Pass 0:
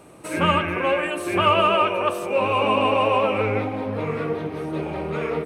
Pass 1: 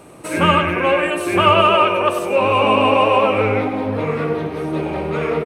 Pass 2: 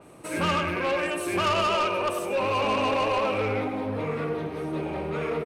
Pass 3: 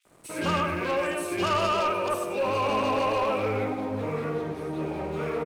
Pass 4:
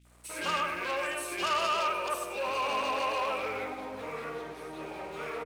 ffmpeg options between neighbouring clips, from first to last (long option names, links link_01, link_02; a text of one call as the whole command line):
ffmpeg -i in.wav -af "aecho=1:1:99:0.299,volume=5dB" out.wav
ffmpeg -i in.wav -af "asoftclip=type=tanh:threshold=-12dB,adynamicequalizer=threshold=0.0224:dfrequency=4400:dqfactor=0.7:tfrequency=4400:tqfactor=0.7:attack=5:release=100:ratio=0.375:range=2:mode=boostabove:tftype=highshelf,volume=-7.5dB" out.wav
ffmpeg -i in.wav -filter_complex "[0:a]aeval=exprs='sgn(val(0))*max(abs(val(0))-0.00299,0)':channel_layout=same,acrossover=split=2600[link_01][link_02];[link_01]adelay=50[link_03];[link_03][link_02]amix=inputs=2:normalize=0" out.wav
ffmpeg -i in.wav -af "highpass=frequency=1200:poles=1,aeval=exprs='val(0)+0.001*(sin(2*PI*60*n/s)+sin(2*PI*2*60*n/s)/2+sin(2*PI*3*60*n/s)/3+sin(2*PI*4*60*n/s)/4+sin(2*PI*5*60*n/s)/5)':channel_layout=same" out.wav